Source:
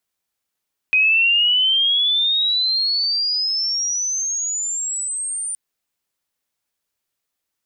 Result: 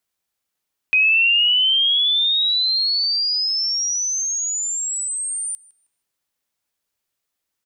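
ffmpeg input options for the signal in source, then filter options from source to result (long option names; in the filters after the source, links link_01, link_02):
-f lavfi -i "aevalsrc='pow(10,(-12-11*t/4.62)/20)*sin(2*PI*2500*4.62/log(9200/2500)*(exp(log(9200/2500)*t/4.62)-1))':duration=4.62:sample_rate=44100"
-filter_complex "[0:a]asplit=2[link_01][link_02];[link_02]adelay=158,lowpass=frequency=4000:poles=1,volume=-17dB,asplit=2[link_03][link_04];[link_04]adelay=158,lowpass=frequency=4000:poles=1,volume=0.42,asplit=2[link_05][link_06];[link_06]adelay=158,lowpass=frequency=4000:poles=1,volume=0.42,asplit=2[link_07][link_08];[link_08]adelay=158,lowpass=frequency=4000:poles=1,volume=0.42[link_09];[link_01][link_03][link_05][link_07][link_09]amix=inputs=5:normalize=0"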